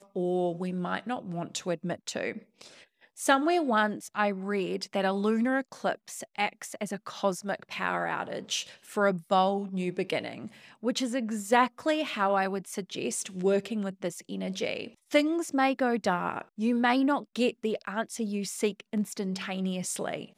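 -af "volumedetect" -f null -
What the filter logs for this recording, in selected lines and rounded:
mean_volume: -29.8 dB
max_volume: -9.4 dB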